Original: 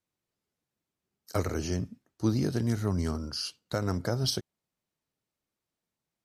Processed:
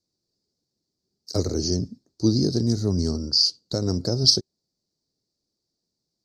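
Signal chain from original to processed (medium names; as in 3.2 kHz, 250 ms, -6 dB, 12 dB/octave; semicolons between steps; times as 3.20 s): FFT filter 140 Hz 0 dB, 380 Hz +3 dB, 1.2 kHz -13 dB, 2.9 kHz -18 dB, 4.6 kHz +13 dB, 11 kHz -12 dB; trim +5 dB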